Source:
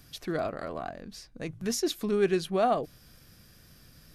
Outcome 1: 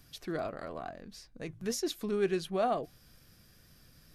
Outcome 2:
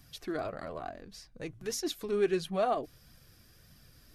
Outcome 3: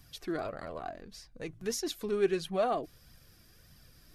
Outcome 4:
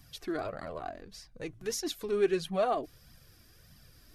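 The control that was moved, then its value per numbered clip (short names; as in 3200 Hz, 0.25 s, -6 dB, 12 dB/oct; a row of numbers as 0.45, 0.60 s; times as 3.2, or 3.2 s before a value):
flange, regen: +89, -36, +34, -3%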